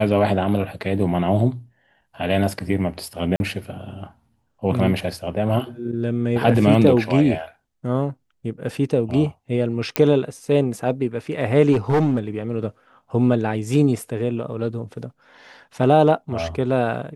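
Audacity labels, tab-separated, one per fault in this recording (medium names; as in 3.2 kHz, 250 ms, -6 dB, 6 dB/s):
3.360000	3.400000	dropout 41 ms
9.960000	9.960000	pop -2 dBFS
11.720000	12.190000	clipped -14 dBFS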